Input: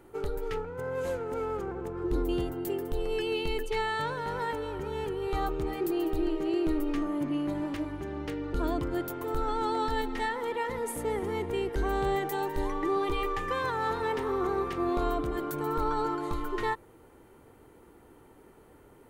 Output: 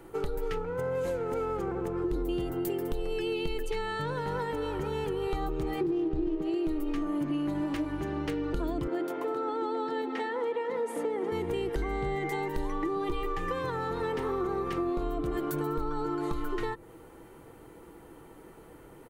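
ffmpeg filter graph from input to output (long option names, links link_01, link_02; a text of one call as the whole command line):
ffmpeg -i in.wav -filter_complex "[0:a]asettb=1/sr,asplit=3[link_01][link_02][link_03];[link_01]atrim=end=5.814[link_04];[link_02]atrim=start=5.81:end=6.42,asetpts=PTS-STARTPTS,afade=type=in:duration=0.004:curve=qsin,afade=type=out:start_time=0.606:duration=0.004:curve=qsin,equalizer=frequency=110:width=0.33:gain=10,adynamicsmooth=sensitivity=7:basefreq=950[link_05];[link_03]atrim=start=6.416[link_06];[link_04][link_05]acrossfade=duration=0.004:curve1=hsin:curve2=qsin[link_07];[link_07][link_06]acrossfade=duration=0.004:curve1=qsin:curve2=hsin,asettb=1/sr,asplit=3[link_08][link_09][link_10];[link_08]atrim=end=8.874[link_11];[link_09]atrim=start=8.87:end=11.32,asetpts=PTS-STARTPTS,afade=type=in:duration=0.004:curve=qsin,afade=type=out:start_time=2.446:duration=0.004:curve=qsin,highpass=frequency=280:width=0.5412,highpass=frequency=280:width=1.3066,aemphasis=mode=reproduction:type=bsi,bandreject=frequency=50:width_type=h:width=6,bandreject=frequency=100:width_type=h:width=6,bandreject=frequency=150:width_type=h:width=6,bandreject=frequency=200:width_type=h:width=6,bandreject=frequency=250:width_type=h:width=6,bandreject=frequency=300:width_type=h:width=6,bandreject=frequency=350:width_type=h:width=6,bandreject=frequency=400:width_type=h:width=6[link_12];[link_10]atrim=start=11.316[link_13];[link_11][link_12]acrossfade=duration=0.004:curve1=hsin:curve2=qsin[link_14];[link_14][link_13]acrossfade=duration=0.004:curve1=qsin:curve2=hsin,asettb=1/sr,asplit=3[link_15][link_16][link_17];[link_15]atrim=end=11.824[link_18];[link_16]atrim=start=11.82:end=12.48,asetpts=PTS-STARTPTS,afade=type=in:duration=0.004:curve=qsin,afade=type=out:start_time=0.656:duration=0.004:curve=qsin,lowpass=8900,aeval=exprs='val(0)+0.0141*sin(2*PI*2100*n/s)':channel_layout=same[link_19];[link_17]atrim=start=12.476[link_20];[link_18][link_19]acrossfade=duration=0.004:curve1=hsin:curve2=qsin[link_21];[link_21][link_20]acrossfade=duration=0.004:curve1=qsin:curve2=hsin,acrossover=split=460[link_22][link_23];[link_23]acompressor=threshold=-36dB:ratio=6[link_24];[link_22][link_24]amix=inputs=2:normalize=0,aecho=1:1:6.1:0.31,acompressor=threshold=-32dB:ratio=6,volume=4.5dB" out.wav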